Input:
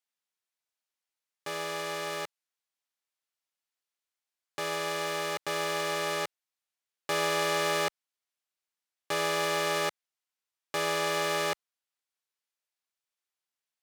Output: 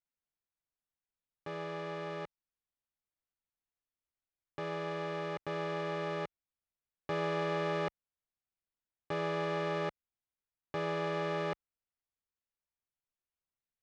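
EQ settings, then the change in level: air absorption 93 m; RIAA curve playback; -6.0 dB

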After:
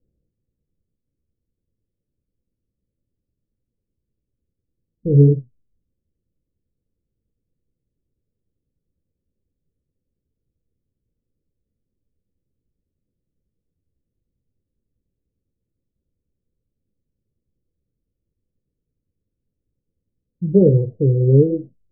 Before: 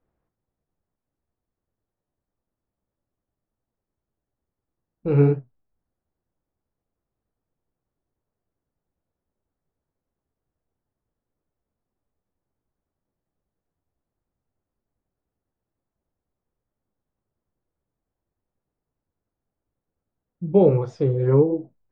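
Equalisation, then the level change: Chebyshev low-pass 520 Hz, order 4; low shelf 300 Hz +10 dB; -1.0 dB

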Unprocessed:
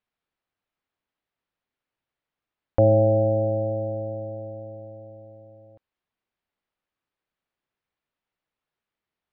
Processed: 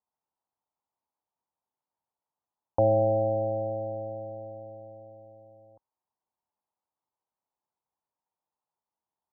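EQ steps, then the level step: HPF 54 Hz; synth low-pass 910 Hz, resonance Q 4.9; -8.5 dB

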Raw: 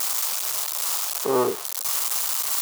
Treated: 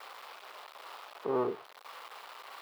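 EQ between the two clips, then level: air absorption 430 m; -8.0 dB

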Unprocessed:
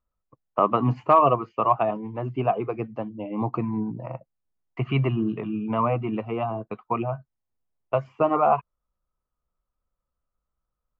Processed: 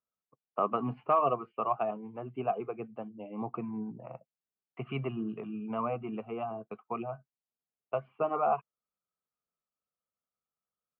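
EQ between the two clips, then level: air absorption 220 m; speaker cabinet 230–3200 Hz, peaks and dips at 310 Hz -9 dB, 560 Hz -5 dB, 970 Hz -8 dB, 1900 Hz -9 dB; -4.0 dB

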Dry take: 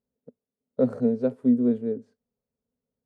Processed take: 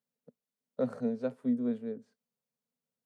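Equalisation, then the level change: HPF 150 Hz 24 dB/oct; bell 340 Hz -13.5 dB 1.5 oct; 0.0 dB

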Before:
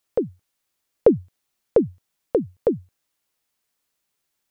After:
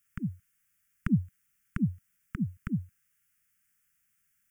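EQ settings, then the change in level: Chebyshev band-stop 200–1400 Hz, order 3; fixed phaser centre 1700 Hz, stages 4; +5.0 dB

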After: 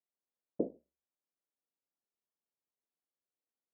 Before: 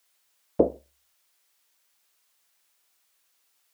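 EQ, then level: ladder band-pass 260 Hz, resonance 25%; 0.0 dB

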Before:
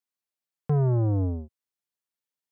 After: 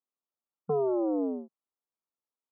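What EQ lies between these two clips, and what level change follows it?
dynamic EQ 480 Hz, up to +5 dB, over -41 dBFS, Q 1.2; brick-wall FIR band-pass 170–1400 Hz; 0.0 dB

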